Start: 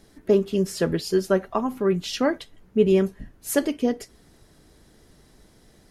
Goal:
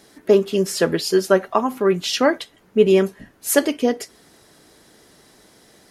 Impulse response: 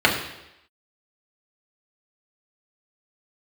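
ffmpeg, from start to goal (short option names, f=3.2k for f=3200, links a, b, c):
-af "highpass=f=420:p=1,volume=8dB"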